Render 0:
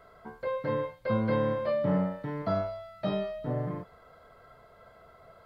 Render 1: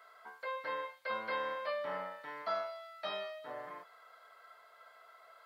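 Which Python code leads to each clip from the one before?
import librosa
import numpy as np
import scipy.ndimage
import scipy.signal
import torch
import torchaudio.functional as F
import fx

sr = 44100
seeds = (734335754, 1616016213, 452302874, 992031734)

y = scipy.signal.sosfilt(scipy.signal.butter(2, 1100.0, 'highpass', fs=sr, output='sos'), x)
y = y * librosa.db_to_amplitude(1.5)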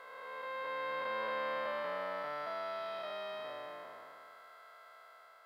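y = fx.spec_blur(x, sr, span_ms=775.0)
y = y * librosa.db_to_amplitude(4.0)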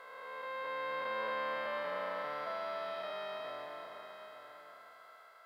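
y = x + 10.0 ** (-10.5 / 20.0) * np.pad(x, (int(883 * sr / 1000.0), 0))[:len(x)]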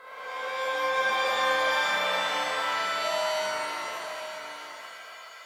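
y = fx.rev_shimmer(x, sr, seeds[0], rt60_s=1.4, semitones=7, shimmer_db=-2, drr_db=-5.0)
y = y * librosa.db_to_amplitude(2.5)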